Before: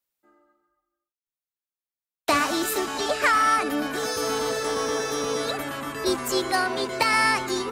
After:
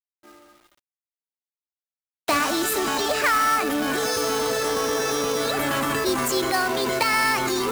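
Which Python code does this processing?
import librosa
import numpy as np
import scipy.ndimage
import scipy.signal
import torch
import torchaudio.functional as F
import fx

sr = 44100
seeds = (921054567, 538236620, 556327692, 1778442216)

p1 = fx.over_compress(x, sr, threshold_db=-34.0, ratio=-1.0)
p2 = x + (p1 * librosa.db_to_amplitude(2.0))
p3 = fx.quant_companded(p2, sr, bits=4)
y = p3 * librosa.db_to_amplitude(-1.5)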